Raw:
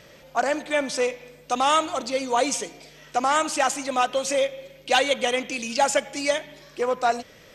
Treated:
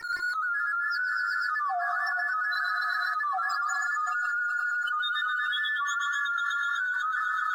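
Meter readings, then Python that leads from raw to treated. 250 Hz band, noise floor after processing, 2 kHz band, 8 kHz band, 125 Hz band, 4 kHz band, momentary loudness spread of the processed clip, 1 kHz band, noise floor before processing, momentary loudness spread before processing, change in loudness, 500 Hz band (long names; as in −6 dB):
below −35 dB, −31 dBFS, +4.5 dB, −16.0 dB, below −20 dB, −7.0 dB, 1 LU, −3.5 dB, −51 dBFS, 9 LU, −3.5 dB, −22.5 dB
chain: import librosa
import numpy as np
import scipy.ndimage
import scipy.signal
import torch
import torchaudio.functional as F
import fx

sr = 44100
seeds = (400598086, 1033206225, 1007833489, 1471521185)

p1 = fx.band_invert(x, sr, width_hz=2000)
p2 = scipy.signal.sosfilt(scipy.signal.butter(2, 4800.0, 'lowpass', fs=sr, output='sos'), p1)
p3 = fx.tilt_eq(p2, sr, slope=2.0)
p4 = fx.level_steps(p3, sr, step_db=17)
p5 = p3 + (p4 * 10.0 ** (-2.0 / 20.0))
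p6 = fx.spec_topn(p5, sr, count=1)
p7 = fx.backlash(p6, sr, play_db=-53.0)
p8 = fx.comb_fb(p7, sr, f0_hz=350.0, decay_s=0.17, harmonics='all', damping=0.0, mix_pct=60)
p9 = p8 + fx.echo_wet_highpass(p8, sr, ms=124, feedback_pct=82, hz=1800.0, wet_db=-7.0, dry=0)
p10 = fx.rev_gated(p9, sr, seeds[0], gate_ms=490, shape='flat', drr_db=10.5)
p11 = fx.env_flatten(p10, sr, amount_pct=100)
y = p11 * 10.0 ** (-3.5 / 20.0)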